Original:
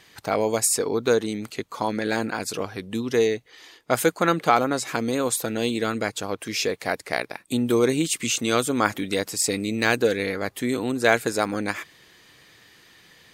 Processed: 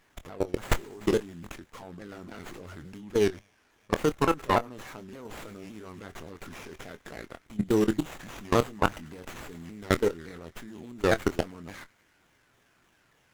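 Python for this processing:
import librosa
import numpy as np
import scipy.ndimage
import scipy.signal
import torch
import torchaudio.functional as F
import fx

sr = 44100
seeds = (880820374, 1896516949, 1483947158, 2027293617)

y = fx.pitch_ramps(x, sr, semitones=-4.5, every_ms=285)
y = fx.filter_lfo_notch(y, sr, shape='saw_down', hz=3.3, low_hz=530.0, high_hz=6300.0, q=1.4)
y = fx.echo_wet_highpass(y, sr, ms=104, feedback_pct=70, hz=1800.0, wet_db=-16.5)
y = fx.level_steps(y, sr, step_db=22)
y = fx.high_shelf(y, sr, hz=5000.0, db=9.0)
y = fx.doubler(y, sr, ms=24.0, db=-12)
y = fx.running_max(y, sr, window=9)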